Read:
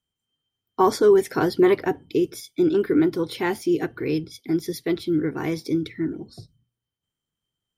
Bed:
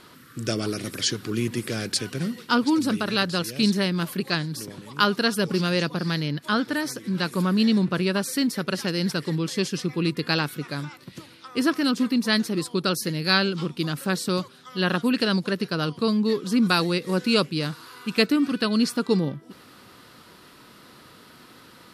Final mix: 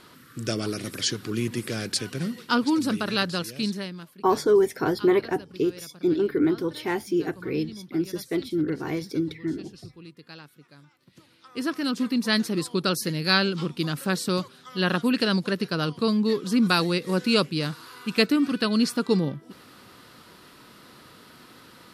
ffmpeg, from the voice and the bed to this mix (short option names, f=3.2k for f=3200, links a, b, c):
-filter_complex "[0:a]adelay=3450,volume=-3dB[a];[1:a]volume=19dB,afade=t=out:st=3.22:d=0.89:silence=0.105925,afade=t=in:st=10.94:d=1.49:silence=0.0944061[b];[a][b]amix=inputs=2:normalize=0"